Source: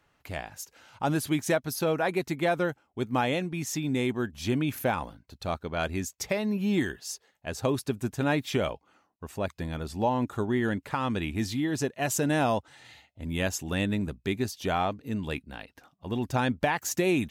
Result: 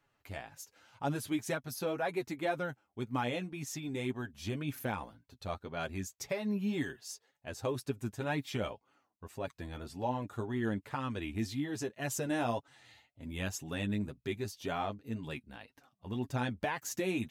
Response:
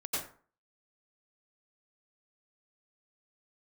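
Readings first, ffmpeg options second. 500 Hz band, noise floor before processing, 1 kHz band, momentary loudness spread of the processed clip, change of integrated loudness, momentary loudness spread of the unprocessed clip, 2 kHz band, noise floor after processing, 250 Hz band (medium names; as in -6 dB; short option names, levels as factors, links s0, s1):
-8.0 dB, -72 dBFS, -8.0 dB, 11 LU, -8.0 dB, 12 LU, -8.0 dB, -79 dBFS, -8.0 dB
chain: -af "flanger=delay=7:depth=3.1:regen=17:speed=1.9:shape=sinusoidal,volume=0.596"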